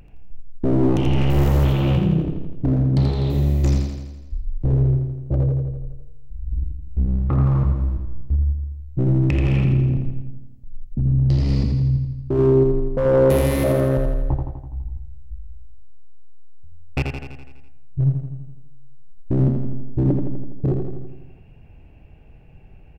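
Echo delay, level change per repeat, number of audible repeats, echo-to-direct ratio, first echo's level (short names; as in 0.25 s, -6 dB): 83 ms, -4.5 dB, 7, -3.0 dB, -5.0 dB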